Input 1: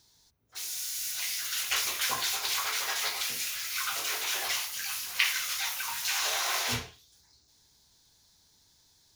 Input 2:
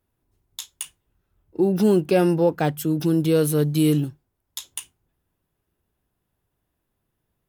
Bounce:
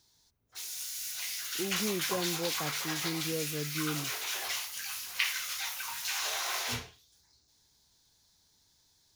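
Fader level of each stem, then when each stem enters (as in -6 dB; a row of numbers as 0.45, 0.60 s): -4.0, -17.0 dB; 0.00, 0.00 s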